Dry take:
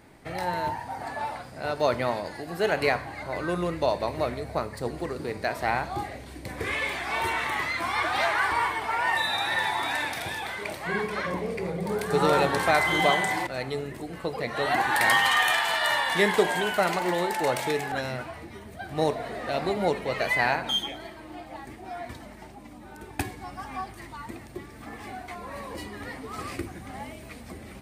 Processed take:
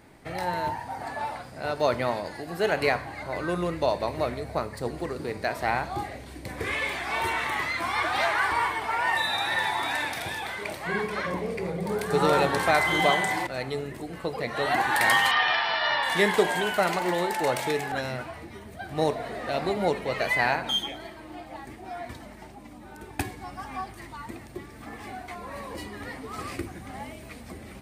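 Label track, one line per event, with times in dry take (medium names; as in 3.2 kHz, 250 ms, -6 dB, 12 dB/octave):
15.310000	16.030000	Chebyshev low-pass 5.7 kHz, order 10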